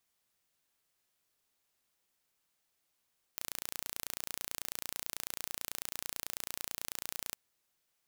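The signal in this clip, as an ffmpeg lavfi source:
-f lavfi -i "aevalsrc='0.299*eq(mod(n,1515),0)':d=3.98:s=44100"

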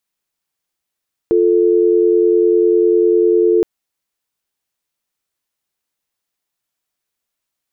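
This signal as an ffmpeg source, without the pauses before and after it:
-f lavfi -i "aevalsrc='0.251*(sin(2*PI*350*t)+sin(2*PI*440*t))':d=2.32:s=44100"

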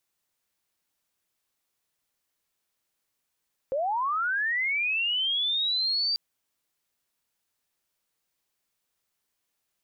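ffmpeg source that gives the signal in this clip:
-f lavfi -i "aevalsrc='pow(10,(-24.5+1*t/2.44)/20)*sin(2*PI*(510*t+4190*t*t/(2*2.44)))':d=2.44:s=44100"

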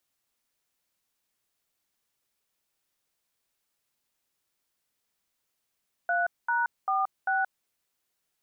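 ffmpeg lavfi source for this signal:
-f lavfi -i "aevalsrc='0.0501*clip(min(mod(t,0.394),0.176-mod(t,0.394))/0.002,0,1)*(eq(floor(t/0.394),0)*(sin(2*PI*697*mod(t,0.394))+sin(2*PI*1477*mod(t,0.394)))+eq(floor(t/0.394),1)*(sin(2*PI*941*mod(t,0.394))+sin(2*PI*1477*mod(t,0.394)))+eq(floor(t/0.394),2)*(sin(2*PI*770*mod(t,0.394))+sin(2*PI*1209*mod(t,0.394)))+eq(floor(t/0.394),3)*(sin(2*PI*770*mod(t,0.394))+sin(2*PI*1477*mod(t,0.394))))':d=1.576:s=44100"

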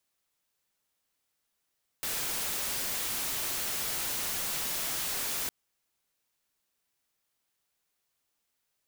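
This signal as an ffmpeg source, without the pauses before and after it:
-f lavfi -i "anoisesrc=c=white:a=0.0388:d=3.46:r=44100:seed=1"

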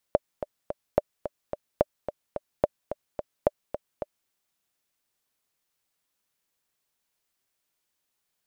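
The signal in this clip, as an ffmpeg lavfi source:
-f lavfi -i "aevalsrc='pow(10,(-6-11*gte(mod(t,3*60/217),60/217))/20)*sin(2*PI*593*mod(t,60/217))*exp(-6.91*mod(t,60/217)/0.03)':d=4.14:s=44100"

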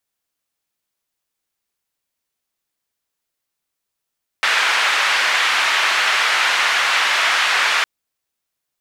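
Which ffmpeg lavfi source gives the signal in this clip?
-f lavfi -i "anoisesrc=c=white:d=3.41:r=44100:seed=1,highpass=f=1300,lowpass=f=2100,volume=1.1dB"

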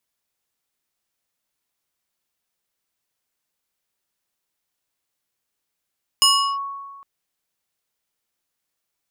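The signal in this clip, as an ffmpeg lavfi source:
-f lavfi -i "aevalsrc='0.316*pow(10,-3*t/1.56)*sin(2*PI*1110*t+1.9*clip(1-t/0.36,0,1)*sin(2*PI*3.62*1110*t))':d=0.81:s=44100"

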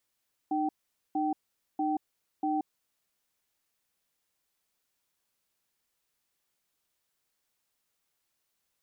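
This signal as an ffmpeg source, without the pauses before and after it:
-f lavfi -i "aevalsrc='0.0355*(sin(2*PI*305*t)+sin(2*PI*772*t))*clip(min(mod(t,0.64),0.18-mod(t,0.64))/0.005,0,1)':d=2.52:s=44100"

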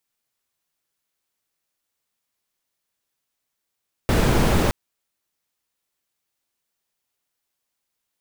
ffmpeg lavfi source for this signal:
-f lavfi -i "anoisesrc=c=brown:a=0.624:d=0.62:r=44100:seed=1"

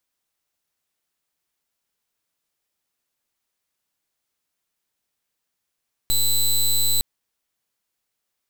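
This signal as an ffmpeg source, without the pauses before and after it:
-f lavfi -i "aevalsrc='0.119*(2*lt(mod(4000*t,1),0.13)-1)':d=0.91:s=44100"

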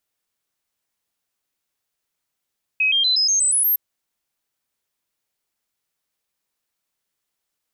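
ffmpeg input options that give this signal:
-f lavfi -i "aevalsrc='0.178*clip(min(mod(t,0.12),0.12-mod(t,0.12))/0.005,0,1)*sin(2*PI*2540*pow(2,floor(t/0.12)/3)*mod(t,0.12))':d=0.96:s=44100"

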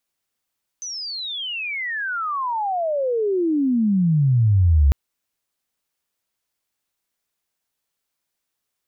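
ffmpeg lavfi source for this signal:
-f lavfi -i "aevalsrc='pow(10,(-28+17*t/4.1)/20)*sin(2*PI*6200*4.1/log(66/6200)*(exp(log(66/6200)*t/4.1)-1))':d=4.1:s=44100"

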